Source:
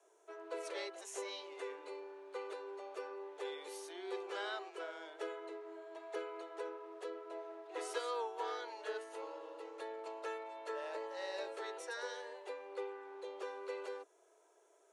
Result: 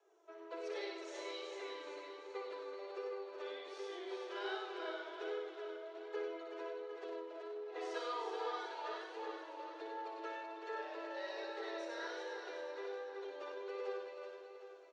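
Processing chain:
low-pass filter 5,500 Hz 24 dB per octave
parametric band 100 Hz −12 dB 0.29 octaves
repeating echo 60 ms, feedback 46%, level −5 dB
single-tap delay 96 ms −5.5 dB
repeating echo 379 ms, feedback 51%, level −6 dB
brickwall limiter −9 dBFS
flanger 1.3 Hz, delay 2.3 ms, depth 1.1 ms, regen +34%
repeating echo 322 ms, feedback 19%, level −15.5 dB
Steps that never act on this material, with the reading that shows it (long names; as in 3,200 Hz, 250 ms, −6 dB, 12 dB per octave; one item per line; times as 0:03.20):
parametric band 100 Hz: nothing at its input below 290 Hz
brickwall limiter −9 dBFS: peak of its input −24.0 dBFS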